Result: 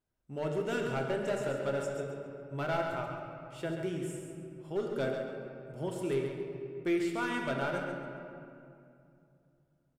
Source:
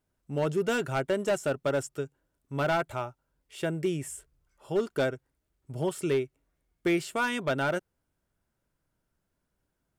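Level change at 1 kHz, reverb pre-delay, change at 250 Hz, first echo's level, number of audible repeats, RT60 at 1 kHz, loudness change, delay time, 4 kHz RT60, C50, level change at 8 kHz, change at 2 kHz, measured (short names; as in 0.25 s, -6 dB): -4.5 dB, 3 ms, -3.0 dB, -7.5 dB, 2, 2.4 s, -5.0 dB, 0.136 s, 1.4 s, 2.0 dB, -9.0 dB, -5.0 dB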